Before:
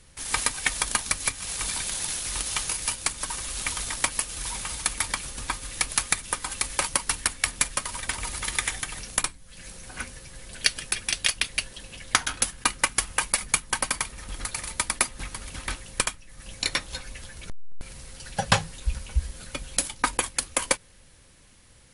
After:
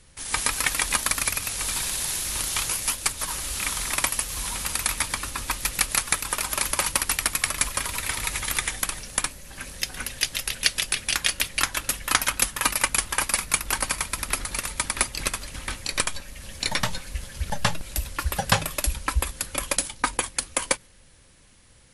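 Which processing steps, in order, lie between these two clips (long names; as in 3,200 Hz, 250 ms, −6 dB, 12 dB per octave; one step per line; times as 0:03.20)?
delay with pitch and tempo change per echo 167 ms, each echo +1 semitone, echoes 2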